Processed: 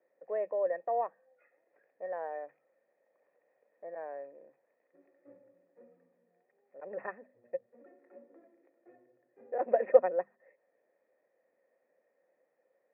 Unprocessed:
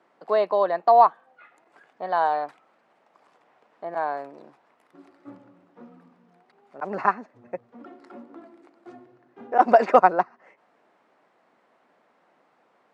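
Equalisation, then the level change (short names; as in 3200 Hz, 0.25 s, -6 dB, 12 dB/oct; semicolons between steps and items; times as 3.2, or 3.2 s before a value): vocal tract filter e; air absorption 260 m; notches 50/100/150/200/250 Hz; 0.0 dB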